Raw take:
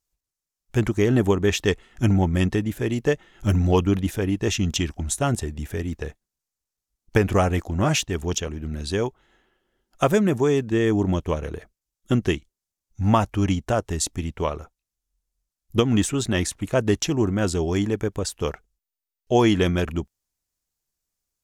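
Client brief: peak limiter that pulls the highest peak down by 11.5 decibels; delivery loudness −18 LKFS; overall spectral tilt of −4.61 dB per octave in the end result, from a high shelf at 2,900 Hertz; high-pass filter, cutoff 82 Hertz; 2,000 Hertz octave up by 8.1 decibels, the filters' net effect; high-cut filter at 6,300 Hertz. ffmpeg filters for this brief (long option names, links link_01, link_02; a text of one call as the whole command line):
ffmpeg -i in.wav -af "highpass=82,lowpass=6300,equalizer=frequency=2000:width_type=o:gain=7,highshelf=frequency=2900:gain=8,volume=7dB,alimiter=limit=-4.5dB:level=0:latency=1" out.wav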